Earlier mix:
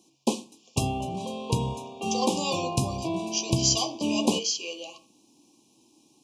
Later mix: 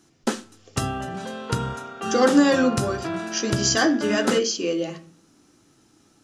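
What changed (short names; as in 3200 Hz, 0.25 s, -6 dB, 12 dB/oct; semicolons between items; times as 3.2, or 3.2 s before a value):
speech: remove HPF 1000 Hz 12 dB/oct; master: remove Chebyshev band-stop 1100–2400 Hz, order 5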